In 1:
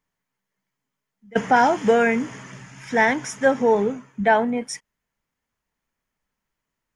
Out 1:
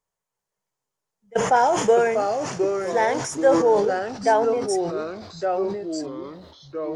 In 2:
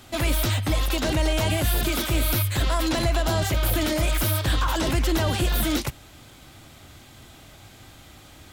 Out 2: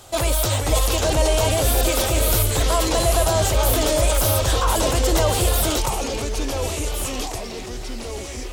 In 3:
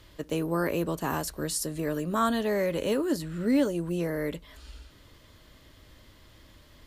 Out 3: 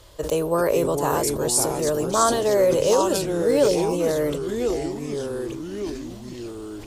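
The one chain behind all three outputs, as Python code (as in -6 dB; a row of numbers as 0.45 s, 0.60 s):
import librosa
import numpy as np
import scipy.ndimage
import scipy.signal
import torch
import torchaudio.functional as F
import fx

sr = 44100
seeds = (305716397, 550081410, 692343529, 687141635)

y = fx.graphic_eq_10(x, sr, hz=(250, 500, 1000, 2000, 8000), db=(-11, 8, 3, -6, 7))
y = fx.echo_pitch(y, sr, ms=356, semitones=-3, count=3, db_per_echo=-6.0)
y = fx.sustainer(y, sr, db_per_s=51.0)
y = y * 10.0 ** (-6 / 20.0) / np.max(np.abs(y))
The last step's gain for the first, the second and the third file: -5.0 dB, +2.0 dB, +4.5 dB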